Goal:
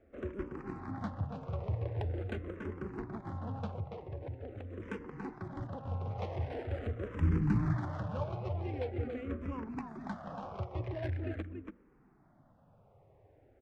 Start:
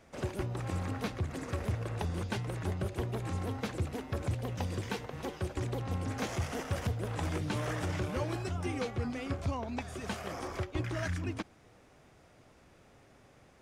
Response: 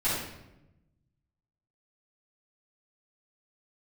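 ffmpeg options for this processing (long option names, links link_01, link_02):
-filter_complex "[0:a]asettb=1/sr,asplit=3[link_01][link_02][link_03];[link_01]atrim=end=3.664[link_04];[link_02]atrim=start=3.66:end=4.8,asetpts=PTS-STARTPTS,afade=type=in:duration=0.004:curve=qsin,afade=type=out:start_time=1.136:duration=0.004:curve=qsin,acompressor=threshold=-36dB:ratio=6[link_05];[link_03]atrim=start=4.796[link_06];[link_04][link_05]acrossfade=duration=0.004:curve1=hsin:curve2=qsin[link_07];[link_07][link_06]acrossfade=duration=0.004:curve1=qsin:curve2=hsin,aecho=1:1:283:0.531,asplit=3[link_08][link_09][link_10];[link_08]afade=type=out:start_time=7.19:duration=0.02[link_11];[link_09]asubboost=boost=7.5:cutoff=180,afade=type=in:start_time=7.19:duration=0.02,afade=type=out:start_time=7.72:duration=0.02[link_12];[link_10]afade=type=in:start_time=7.72:duration=0.02[link_13];[link_11][link_12][link_13]amix=inputs=3:normalize=0,bandreject=frequency=60:width_type=h:width=6,bandreject=frequency=120:width_type=h:width=6,bandreject=frequency=180:width_type=h:width=6,bandreject=frequency=240:width_type=h:width=6,adynamicsmooth=sensitivity=2.5:basefreq=1100,asplit=2[link_14][link_15];[link_15]afreqshift=-0.44[link_16];[link_14][link_16]amix=inputs=2:normalize=1"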